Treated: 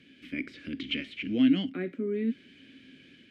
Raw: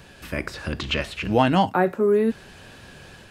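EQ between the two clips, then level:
formant filter i
+4.5 dB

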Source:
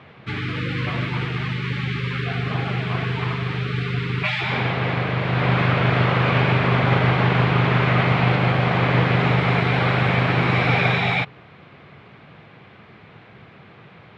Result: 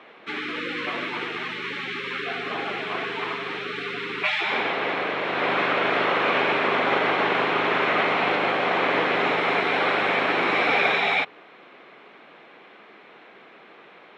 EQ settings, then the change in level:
high-pass filter 280 Hz 24 dB per octave
notch filter 4,700 Hz, Q 11
0.0 dB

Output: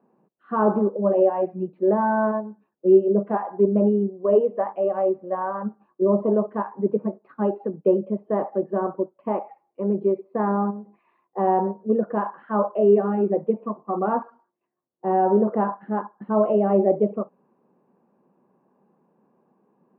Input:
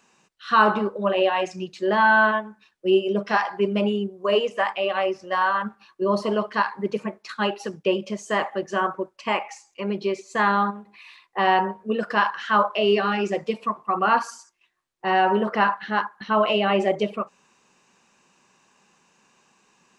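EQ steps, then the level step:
flat-topped band-pass 330 Hz, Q 0.62
high-frequency loss of the air 450 metres
+5.0 dB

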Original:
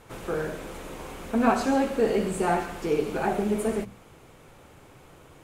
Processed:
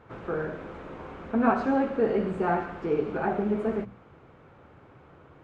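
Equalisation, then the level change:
high-pass filter 53 Hz
head-to-tape spacing loss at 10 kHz 34 dB
parametric band 1,400 Hz +5 dB 0.82 octaves
0.0 dB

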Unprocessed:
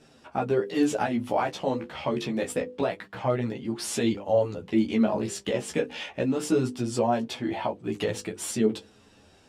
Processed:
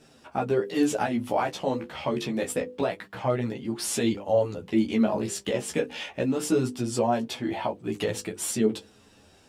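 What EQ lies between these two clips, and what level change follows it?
high-shelf EQ 9,900 Hz +8.5 dB
0.0 dB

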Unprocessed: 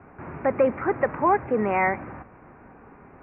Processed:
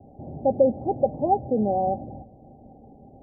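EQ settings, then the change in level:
Chebyshev low-pass with heavy ripple 810 Hz, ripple 6 dB
parametric band 180 Hz −7.5 dB 0.24 octaves
parametric band 410 Hz −4.5 dB 2.2 octaves
+7.5 dB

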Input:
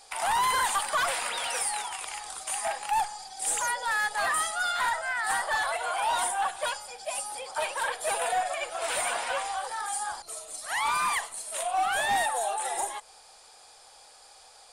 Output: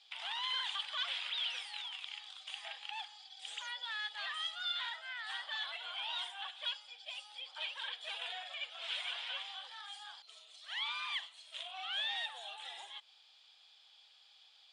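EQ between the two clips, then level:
resonant band-pass 3,300 Hz, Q 5.1
high-frequency loss of the air 100 metres
+4.5 dB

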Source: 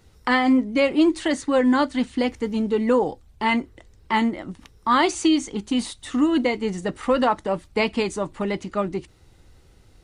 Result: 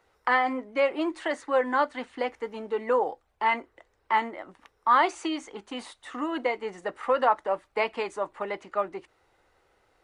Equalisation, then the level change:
three-way crossover with the lows and the highs turned down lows −23 dB, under 460 Hz, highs −14 dB, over 2,200 Hz
0.0 dB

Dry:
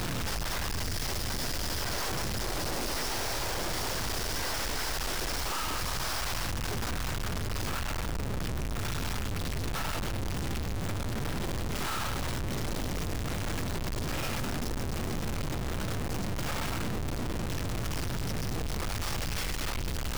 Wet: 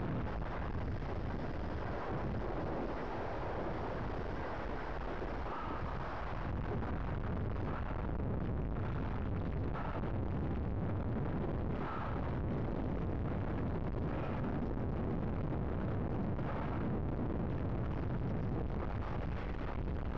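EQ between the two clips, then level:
head-to-tape spacing loss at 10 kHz 43 dB
low-shelf EQ 62 Hz −8.5 dB
high-shelf EQ 2,600 Hz −11.5 dB
0.0 dB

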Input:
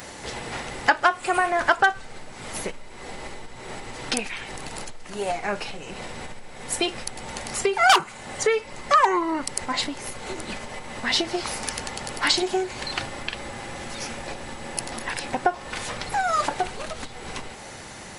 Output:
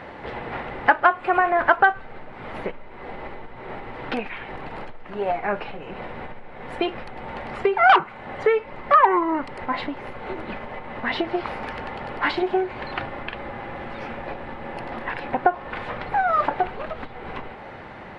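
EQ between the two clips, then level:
high-frequency loss of the air 470 metres
low-shelf EQ 340 Hz −6.5 dB
high-shelf EQ 4,400 Hz −11.5 dB
+6.5 dB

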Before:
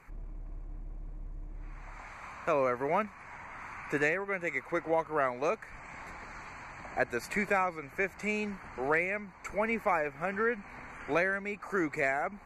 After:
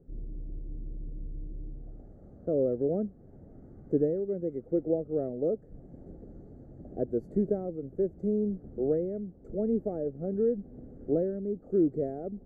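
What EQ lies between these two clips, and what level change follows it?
inverse Chebyshev low-pass filter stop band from 930 Hz, stop band 40 dB
low-shelf EQ 120 Hz −5 dB
+8.5 dB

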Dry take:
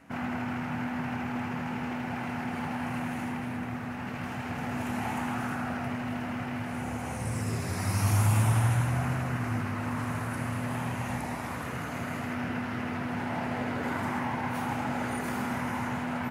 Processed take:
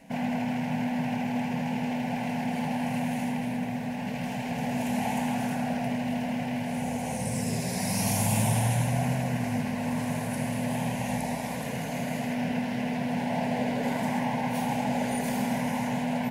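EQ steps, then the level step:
phaser with its sweep stopped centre 340 Hz, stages 6
+6.5 dB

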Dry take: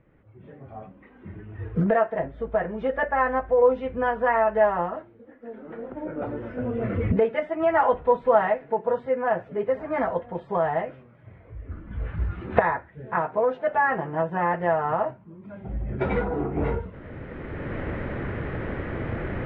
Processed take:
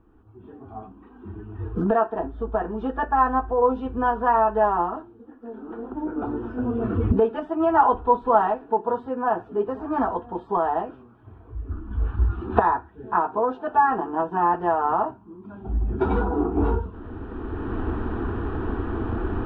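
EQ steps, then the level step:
bass and treble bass +3 dB, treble −5 dB
phaser with its sweep stopped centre 560 Hz, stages 6
+5.5 dB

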